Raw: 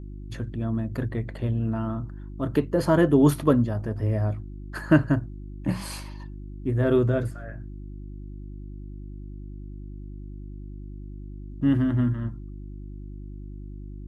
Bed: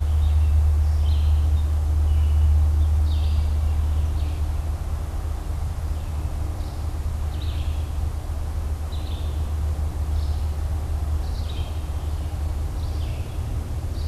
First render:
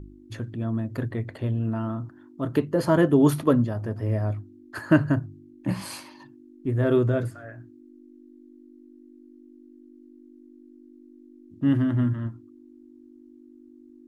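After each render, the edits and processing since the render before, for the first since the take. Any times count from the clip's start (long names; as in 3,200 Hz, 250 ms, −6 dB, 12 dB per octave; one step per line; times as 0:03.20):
hum removal 50 Hz, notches 4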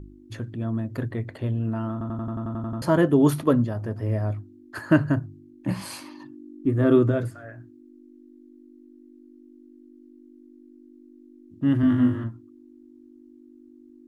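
0:01.92: stutter in place 0.09 s, 10 plays
0:06.01–0:07.11: hollow resonant body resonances 290/1,200 Hz, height 10 dB
0:11.81–0:12.24: flutter between parallel walls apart 3.4 metres, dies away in 0.5 s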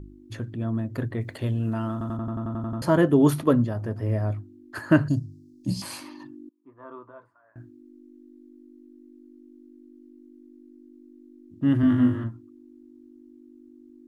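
0:01.21–0:02.17: high-shelf EQ 3,100 Hz +11 dB
0:05.08–0:05.82: drawn EQ curve 240 Hz 0 dB, 940 Hz −20 dB, 1,500 Hz −30 dB, 2,300 Hz −15 dB, 5,000 Hz +14 dB, 12,000 Hz +3 dB
0:06.49–0:07.56: resonant band-pass 1,000 Hz, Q 9.2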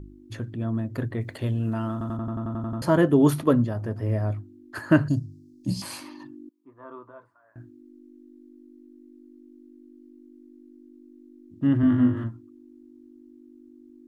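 0:11.67–0:12.17: high-shelf EQ 3,800 Hz −11 dB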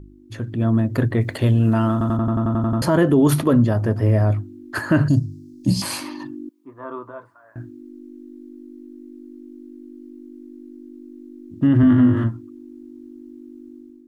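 brickwall limiter −17.5 dBFS, peak gain reduction 10.5 dB
automatic gain control gain up to 10 dB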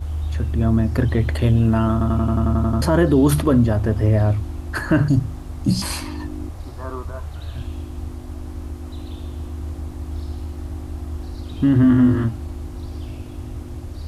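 mix in bed −5 dB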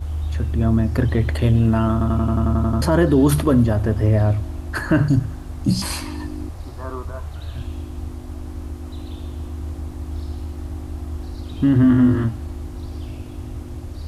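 feedback echo with a high-pass in the loop 97 ms, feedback 70%, level −22 dB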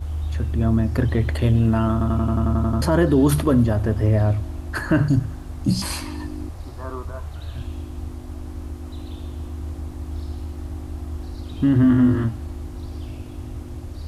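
level −1.5 dB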